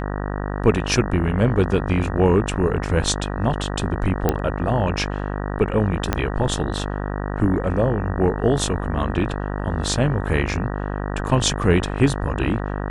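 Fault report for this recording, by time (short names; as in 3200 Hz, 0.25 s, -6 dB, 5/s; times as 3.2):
buzz 50 Hz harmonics 38 -26 dBFS
4.29 pop -5 dBFS
6.13 pop -5 dBFS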